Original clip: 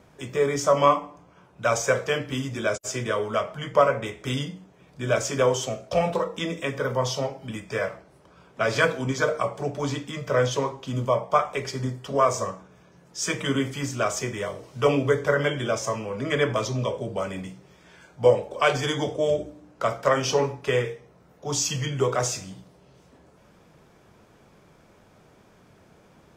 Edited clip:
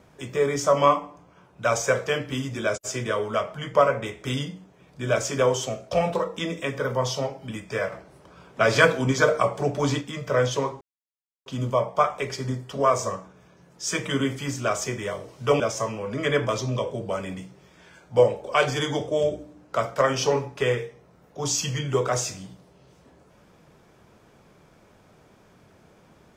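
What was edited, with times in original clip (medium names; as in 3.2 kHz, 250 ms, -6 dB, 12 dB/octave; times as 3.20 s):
7.92–10.01 s: gain +4 dB
10.81 s: insert silence 0.65 s
14.95–15.67 s: delete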